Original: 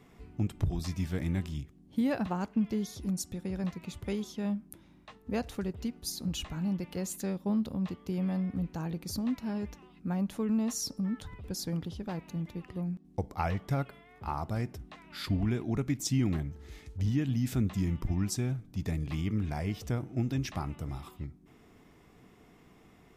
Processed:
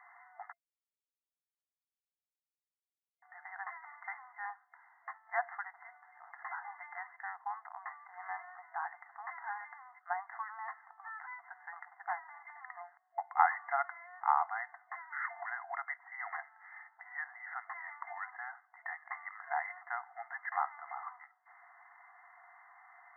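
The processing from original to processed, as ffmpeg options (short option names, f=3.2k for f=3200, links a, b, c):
-filter_complex "[0:a]asplit=3[a][b][c];[a]atrim=end=0.53,asetpts=PTS-STARTPTS,afade=t=out:st=0.526:d=0.004:c=hsin[d];[b]atrim=start=0.53:end=3.22,asetpts=PTS-STARTPTS,volume=0[e];[c]atrim=start=3.22,asetpts=PTS-STARTPTS,afade=t=in:d=0.004:c=hsin[f];[d][e][f]concat=n=3:v=0:a=1,aemphasis=mode=production:type=riaa,afftfilt=real='re*between(b*sr/4096,680,2100)':imag='im*between(b*sr/4096,680,2100)':win_size=4096:overlap=0.75,volume=8dB"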